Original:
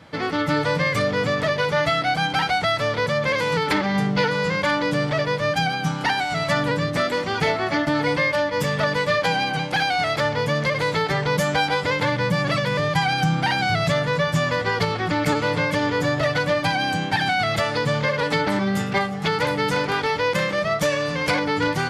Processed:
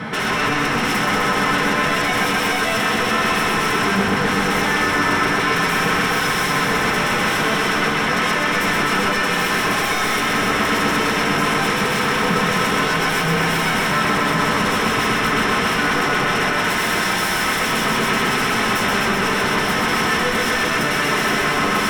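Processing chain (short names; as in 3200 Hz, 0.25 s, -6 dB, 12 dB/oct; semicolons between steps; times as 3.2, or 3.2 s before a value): low shelf 95 Hz -6.5 dB; 16.67–19.09 de-hum 49.4 Hz, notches 40; dynamic EQ 2400 Hz, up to -4 dB, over -31 dBFS, Q 0.71; negative-ratio compressor -25 dBFS, ratio -0.5; soft clip -16 dBFS, distortion -20 dB; resonator 75 Hz, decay 0.29 s, harmonics all, mix 70%; sine folder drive 19 dB, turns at -18.5 dBFS; reverb RT60 0.25 s, pre-delay 3 ms, DRR 4 dB; lo-fi delay 0.127 s, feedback 80%, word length 8-bit, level -4.5 dB; gain -6.5 dB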